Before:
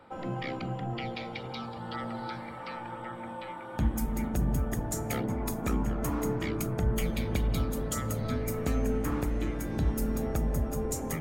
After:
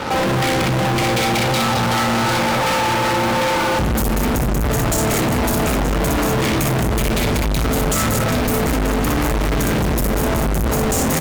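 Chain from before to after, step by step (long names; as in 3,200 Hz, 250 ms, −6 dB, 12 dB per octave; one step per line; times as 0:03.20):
double-tracking delay 32 ms −13 dB
in parallel at +1 dB: compressor whose output falls as the input rises −36 dBFS
on the sum: multi-tap delay 46/61/216 ms −14.5/−3/−9 dB
fuzz pedal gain 44 dB, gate −48 dBFS
level −3.5 dB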